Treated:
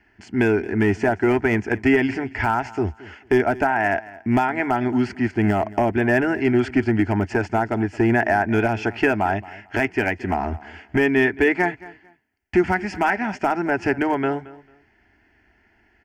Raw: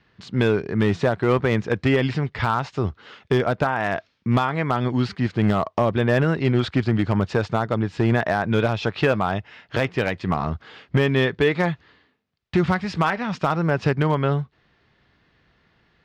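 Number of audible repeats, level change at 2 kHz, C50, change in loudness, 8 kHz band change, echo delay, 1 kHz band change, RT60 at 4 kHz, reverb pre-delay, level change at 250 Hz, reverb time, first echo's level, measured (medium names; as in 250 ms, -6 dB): 2, +4.0 dB, no reverb, +1.0 dB, no reading, 223 ms, +2.5 dB, no reverb, no reverb, +2.5 dB, no reverb, -19.5 dB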